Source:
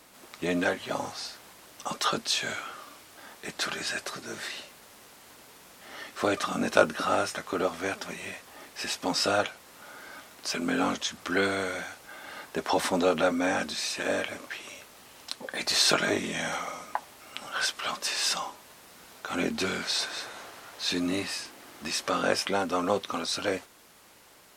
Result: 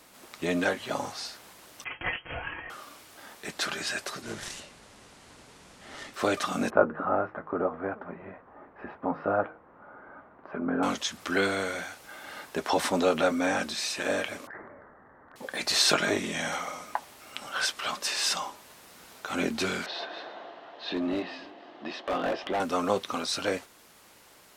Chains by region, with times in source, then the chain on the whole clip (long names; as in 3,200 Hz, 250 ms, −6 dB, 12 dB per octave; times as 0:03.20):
0:01.84–0:02.70: lower of the sound and its delayed copy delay 5.2 ms + low-shelf EQ 380 Hz −11.5 dB + voice inversion scrambler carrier 3,200 Hz
0:04.22–0:06.14: phase distortion by the signal itself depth 0.24 ms + low-pass filter 10,000 Hz 24 dB per octave + low-shelf EQ 200 Hz +10 dB
0:06.70–0:10.83: low-pass filter 1,400 Hz 24 dB per octave + hum removal 156.9 Hz, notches 3
0:14.47–0:15.36: Butterworth low-pass 1,900 Hz 96 dB per octave + transient designer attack −11 dB, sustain +6 dB
0:19.86–0:22.60: loudspeaker in its box 220–3,300 Hz, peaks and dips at 330 Hz +5 dB, 680 Hz +8 dB, 1,400 Hz −6 dB, 2,300 Hz −9 dB + gain into a clipping stage and back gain 24.5 dB + single-tap delay 309 ms −21 dB
whole clip: no processing